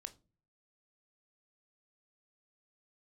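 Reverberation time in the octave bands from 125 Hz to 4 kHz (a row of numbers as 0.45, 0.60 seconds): 0.70, 0.55, 0.40, 0.30, 0.20, 0.20 seconds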